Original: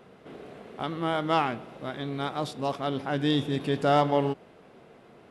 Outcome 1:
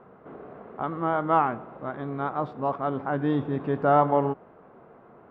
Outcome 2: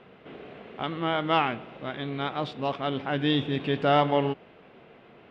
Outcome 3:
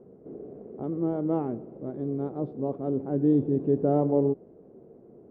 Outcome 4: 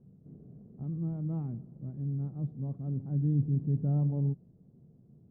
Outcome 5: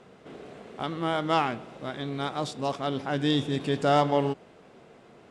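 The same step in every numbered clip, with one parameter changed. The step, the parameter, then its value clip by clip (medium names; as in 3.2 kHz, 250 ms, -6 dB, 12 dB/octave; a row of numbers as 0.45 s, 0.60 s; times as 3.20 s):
resonant low-pass, frequency: 1.2 kHz, 2.9 kHz, 400 Hz, 150 Hz, 7.8 kHz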